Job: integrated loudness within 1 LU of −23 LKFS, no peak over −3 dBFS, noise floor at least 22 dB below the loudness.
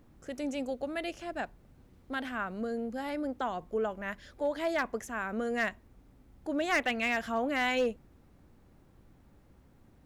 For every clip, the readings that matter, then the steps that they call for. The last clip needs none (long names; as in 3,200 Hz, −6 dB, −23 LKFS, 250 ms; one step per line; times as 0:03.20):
share of clipped samples 0.3%; peaks flattened at −22.5 dBFS; integrated loudness −33.5 LKFS; sample peak −22.5 dBFS; target loudness −23.0 LKFS
→ clipped peaks rebuilt −22.5 dBFS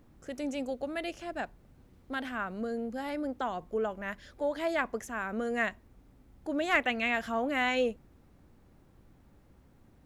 share of clipped samples 0.0%; integrated loudness −33.0 LKFS; sample peak −13.5 dBFS; target loudness −23.0 LKFS
→ level +10 dB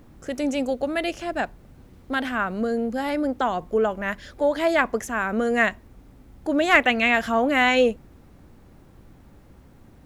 integrated loudness −23.0 LKFS; sample peak −3.5 dBFS; background noise floor −51 dBFS